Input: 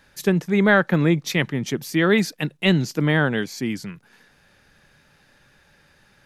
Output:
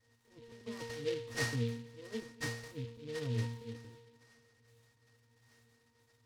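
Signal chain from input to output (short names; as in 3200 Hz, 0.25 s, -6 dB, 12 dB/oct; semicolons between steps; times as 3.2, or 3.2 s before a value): minimum comb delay 2.6 ms; treble ducked by the level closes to 1000 Hz, closed at -19 dBFS; auto swell 0.29 s; octave resonator A#, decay 0.62 s; on a send: analogue delay 0.229 s, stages 4096, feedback 57%, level -23 dB; on the sum: noise-modulated delay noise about 3000 Hz, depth 0.072 ms; gain +10.5 dB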